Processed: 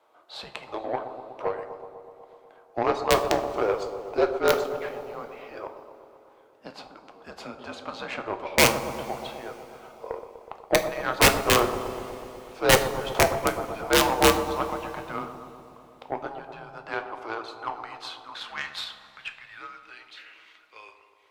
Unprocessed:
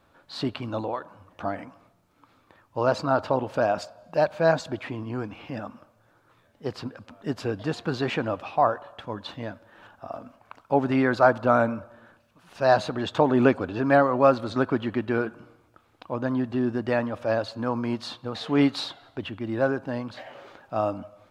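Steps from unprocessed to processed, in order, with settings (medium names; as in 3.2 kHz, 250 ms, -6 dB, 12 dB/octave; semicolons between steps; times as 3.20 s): high-pass 400 Hz 12 dB/octave; in parallel at 0 dB: compression 10:1, threshold -32 dBFS, peak gain reduction 19.5 dB; on the sum: high-pass sweep 820 Hz -> 2.5 kHz, 16.17–20.13 s; integer overflow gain 7 dB; frequency shift -220 Hz; Chebyshev shaper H 2 -14 dB, 7 -22 dB, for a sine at -3 dBFS; on a send: bucket-brigade echo 123 ms, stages 1024, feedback 74%, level -10 dB; on the sum: two-slope reverb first 0.38 s, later 3.4 s, from -18 dB, DRR 7.5 dB; trim -2.5 dB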